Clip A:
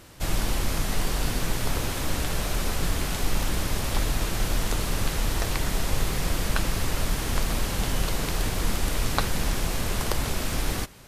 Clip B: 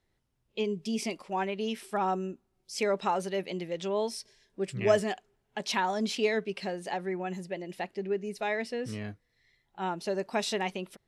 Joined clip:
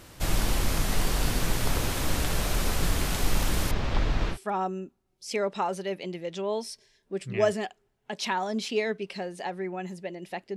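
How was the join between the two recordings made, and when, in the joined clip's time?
clip A
0:03.71–0:04.38: high-frequency loss of the air 190 metres
0:04.34: continue with clip B from 0:01.81, crossfade 0.08 s

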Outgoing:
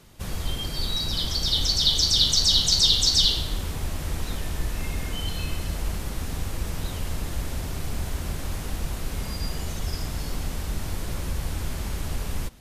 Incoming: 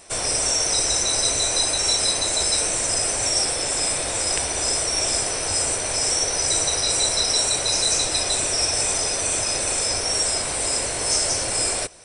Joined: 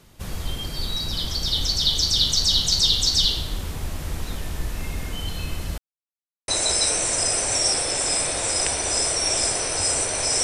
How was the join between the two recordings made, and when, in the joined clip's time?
outgoing
0:05.78–0:06.48: silence
0:06.48: continue with incoming from 0:02.19

